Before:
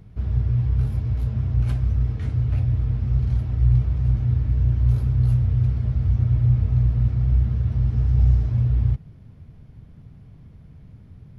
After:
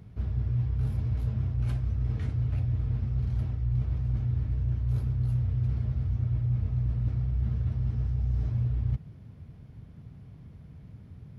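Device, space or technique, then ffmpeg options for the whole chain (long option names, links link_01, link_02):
compression on the reversed sound: -af "areverse,acompressor=threshold=-22dB:ratio=6,areverse,highpass=52,volume=-1.5dB"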